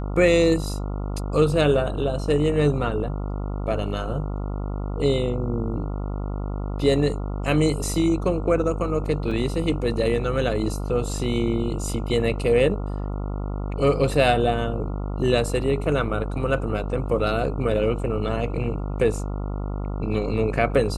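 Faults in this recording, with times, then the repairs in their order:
buzz 50 Hz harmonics 28 -28 dBFS
9.31 s: dropout 3.6 ms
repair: de-hum 50 Hz, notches 28; interpolate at 9.31 s, 3.6 ms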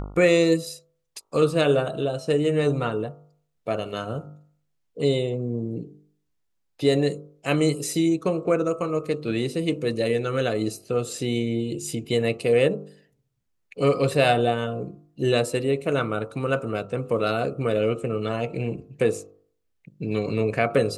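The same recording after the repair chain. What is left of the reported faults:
nothing left

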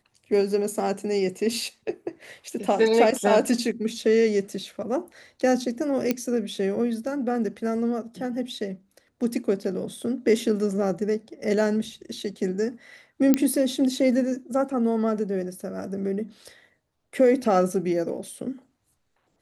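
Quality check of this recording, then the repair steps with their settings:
6.11 s: pop -9 dBFS
13.34 s: pop -7 dBFS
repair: de-click

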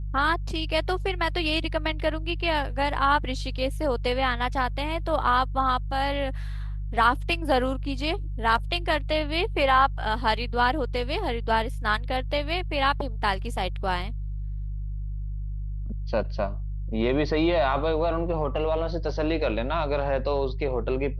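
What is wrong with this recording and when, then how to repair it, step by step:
hum 50 Hz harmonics 3 -31 dBFS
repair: de-hum 50 Hz, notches 3

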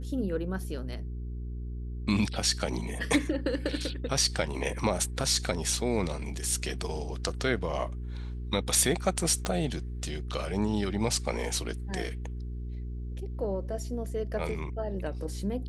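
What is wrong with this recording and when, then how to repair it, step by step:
hum 60 Hz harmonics 7 -36 dBFS
9.45 s: pop -16 dBFS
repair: de-click; de-hum 60 Hz, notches 7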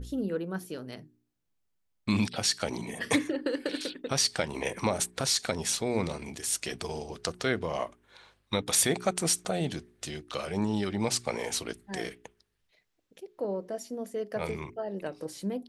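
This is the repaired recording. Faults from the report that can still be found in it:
9.45 s: pop

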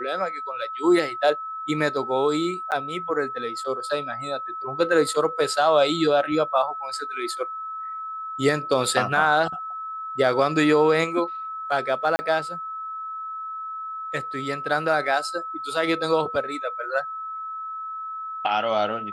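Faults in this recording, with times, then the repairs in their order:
whine 1.3 kHz -30 dBFS
2.71–2.72 s: dropout 9 ms
12.16–12.19 s: dropout 30 ms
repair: band-stop 1.3 kHz, Q 30; interpolate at 2.71 s, 9 ms; interpolate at 12.16 s, 30 ms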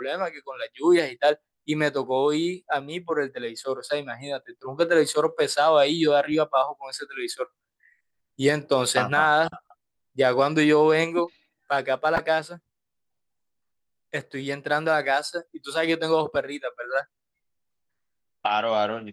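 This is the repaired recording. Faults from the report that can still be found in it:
nothing left

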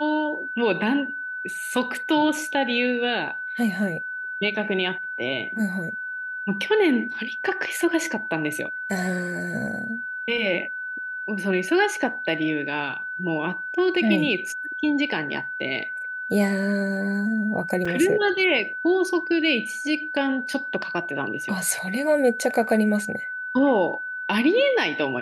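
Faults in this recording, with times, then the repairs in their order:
whine 1.5 kHz -29 dBFS
17.85 s: dropout 4.5 ms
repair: band-stop 1.5 kHz, Q 30; interpolate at 17.85 s, 4.5 ms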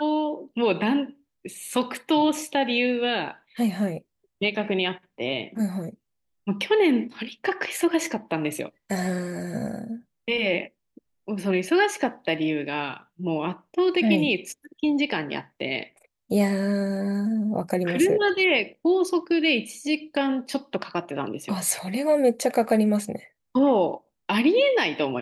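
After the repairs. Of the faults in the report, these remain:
nothing left

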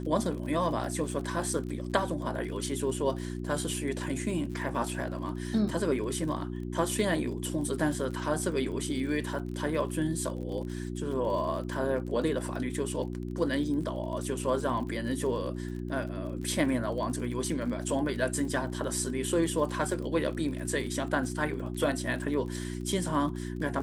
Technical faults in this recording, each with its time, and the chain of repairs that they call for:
crackle 40 per s -38 dBFS
hum 60 Hz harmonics 6 -36 dBFS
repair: de-click; de-hum 60 Hz, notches 6

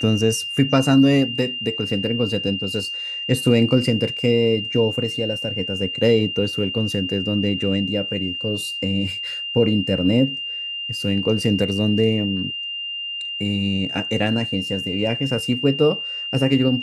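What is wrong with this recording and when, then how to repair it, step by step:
whine 2.8 kHz -26 dBFS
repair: band-stop 2.8 kHz, Q 30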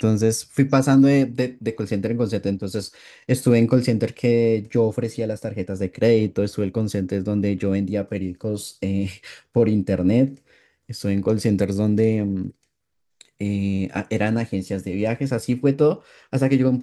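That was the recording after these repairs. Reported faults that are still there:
nothing left

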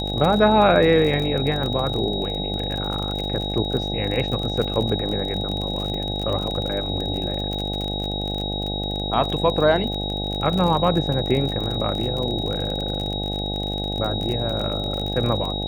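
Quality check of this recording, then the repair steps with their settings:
buzz 50 Hz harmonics 17 -28 dBFS
crackle 38 per s -25 dBFS
whine 3.8 kHz -28 dBFS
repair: de-click; band-stop 3.8 kHz, Q 30; de-hum 50 Hz, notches 17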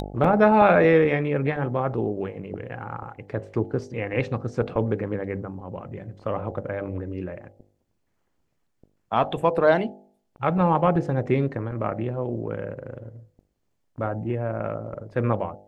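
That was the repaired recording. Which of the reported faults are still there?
nothing left

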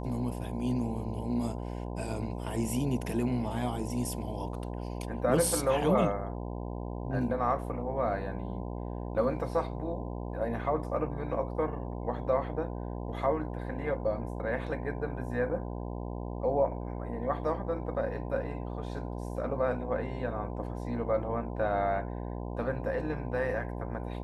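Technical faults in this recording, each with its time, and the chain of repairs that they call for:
buzz 60 Hz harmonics 17 -37 dBFS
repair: de-hum 60 Hz, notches 17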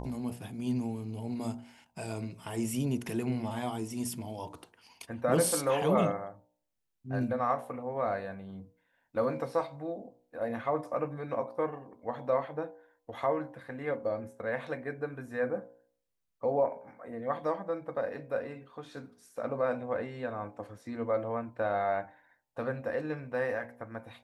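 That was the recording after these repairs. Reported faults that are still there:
nothing left

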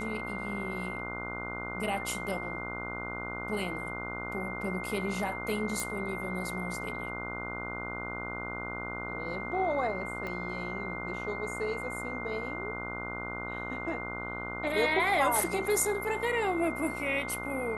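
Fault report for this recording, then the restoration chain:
buzz 60 Hz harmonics 25 -40 dBFS
whine 2.1 kHz -38 dBFS
5.80 s: pop
10.27 s: pop -25 dBFS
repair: de-click; de-hum 60 Hz, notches 25; band-stop 2.1 kHz, Q 30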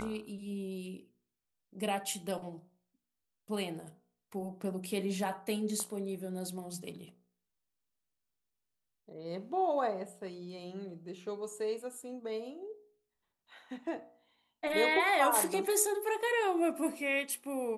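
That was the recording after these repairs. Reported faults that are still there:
10.27 s: pop

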